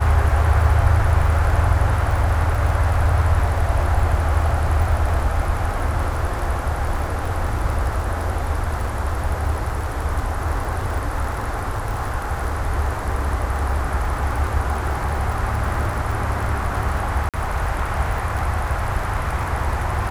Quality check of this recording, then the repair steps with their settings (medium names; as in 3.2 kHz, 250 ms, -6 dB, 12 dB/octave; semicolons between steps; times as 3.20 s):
crackle 42 per s -26 dBFS
17.29–17.34 s: dropout 47 ms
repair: de-click; interpolate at 17.29 s, 47 ms